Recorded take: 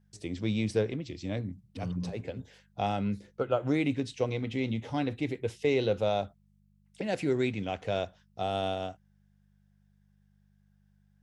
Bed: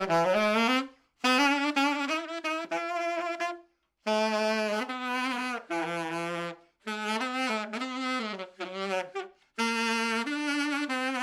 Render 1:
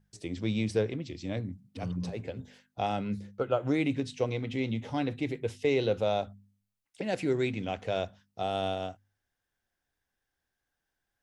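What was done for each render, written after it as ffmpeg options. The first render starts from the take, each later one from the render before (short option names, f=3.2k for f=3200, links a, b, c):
-af "bandreject=f=50:t=h:w=4,bandreject=f=100:t=h:w=4,bandreject=f=150:t=h:w=4,bandreject=f=200:t=h:w=4,bandreject=f=250:t=h:w=4"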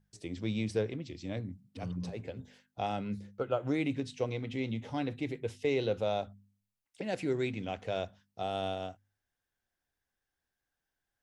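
-af "volume=-3.5dB"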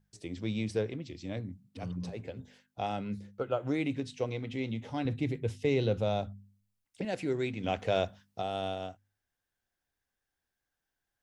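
-filter_complex "[0:a]asettb=1/sr,asplit=3[a][b][c];[a]atrim=end=5.054[d];[b]atrim=start=5.05:end=7.05,asetpts=PTS-STARTPTS,afade=t=in:d=0.004:c=qsin,afade=t=out:st=1.996:d=0.004:c=qsin,bass=f=250:g=9,treble=f=4k:g=1[e];[c]atrim=start=7.046[f];[d][e]acrossfade=d=0.004:c1=hsin:c2=qsin[g];[g][f]acrossfade=d=0.004:c1=qsin:c2=hsin,asplit=3[h][i][j];[h]afade=t=out:st=7.63:d=0.02[k];[i]acontrast=50,afade=t=in:st=7.63:d=0.02,afade=t=out:st=8.4:d=0.02[l];[j]afade=t=in:st=8.4:d=0.02[m];[k][l][m]amix=inputs=3:normalize=0"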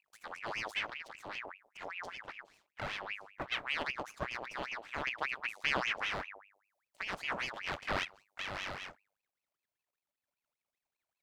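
-af "aeval=exprs='max(val(0),0)':c=same,aeval=exprs='val(0)*sin(2*PI*1600*n/s+1600*0.65/5.1*sin(2*PI*5.1*n/s))':c=same"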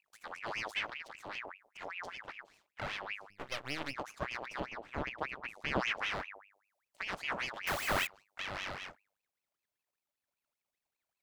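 -filter_complex "[0:a]asettb=1/sr,asplit=3[a][b][c];[a]atrim=end=3.304[d];[b]atrim=start=3.3:end=3.94,asetpts=PTS-STARTPTS,afade=t=in:d=0.004:c=qsin,afade=t=out:st=0.636:d=0.004:c=qsin,aeval=exprs='max(val(0),0)':c=same[e];[c]atrim=start=3.936[f];[d][e]acrossfade=d=0.004:c1=hsin:c2=qsin[g];[g][f]acrossfade=d=0.004:c1=qsin:c2=hsin,asettb=1/sr,asplit=3[h][i][j];[h]atrim=end=4.604[k];[i]atrim=start=4.6:end=5.8,asetpts=PTS-STARTPTS,afade=t=in:d=0.004:c=qsin,afade=t=out:st=1.196:d=0.004:c=qsin,tiltshelf=f=840:g=7.5[l];[j]atrim=start=5.796[m];[k][l]acrossfade=d=0.004:c1=hsin:c2=qsin[n];[n][m]acrossfade=d=0.004:c1=qsin:c2=hsin,asettb=1/sr,asplit=3[o][p][q];[o]atrim=end=7.674[r];[p]atrim=start=7.67:end=8.07,asetpts=PTS-STARTPTS,afade=t=in:d=0.004:c=qsin,afade=t=out:st=0.396:d=0.004:c=qsin,aeval=exprs='val(0)+0.5*0.0251*sgn(val(0))':c=same[s];[q]atrim=start=8.066[t];[r][s]acrossfade=d=0.004:c1=hsin:c2=qsin[u];[u][t]acrossfade=d=0.004:c1=qsin:c2=hsin"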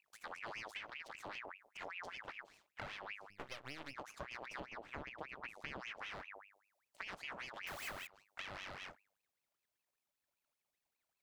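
-af "alimiter=level_in=1dB:limit=-24dB:level=0:latency=1:release=210,volume=-1dB,acompressor=threshold=-43dB:ratio=6"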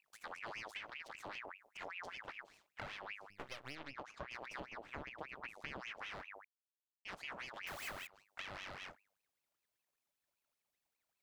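-filter_complex "[0:a]asettb=1/sr,asplit=3[a][b][c];[a]atrim=end=3.754[d];[b]atrim=start=3.75:end=4.3,asetpts=PTS-STARTPTS,afade=t=in:d=0.004:c=qsin,afade=t=out:st=0.546:d=0.004:c=qsin,lowpass=4.8k[e];[c]atrim=start=4.296[f];[d][e]acrossfade=d=0.004:c1=hsin:c2=qsin[g];[g][f]acrossfade=d=0.004:c1=qsin:c2=hsin,asplit=3[h][i][j];[h]atrim=end=6.45,asetpts=PTS-STARTPTS,afade=t=out:st=6.446:d=0.004:c=hsin[k];[i]atrim=start=6.45:end=7.05,asetpts=PTS-STARTPTS,volume=0[l];[j]atrim=start=7.05,asetpts=PTS-STARTPTS,afade=t=in:d=0.004:c=hsin[m];[k][l][m]concat=n=3:v=0:a=1"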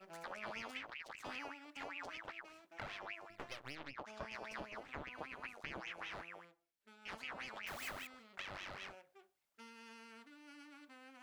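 -filter_complex "[1:a]volume=-28.5dB[a];[0:a][a]amix=inputs=2:normalize=0"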